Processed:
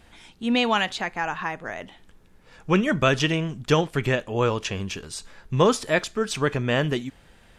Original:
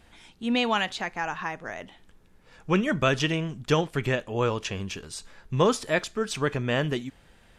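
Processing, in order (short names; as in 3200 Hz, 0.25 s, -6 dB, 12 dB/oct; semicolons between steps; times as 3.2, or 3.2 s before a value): 0.98–1.82 bell 5700 Hz -7.5 dB 0.22 oct; gain +3 dB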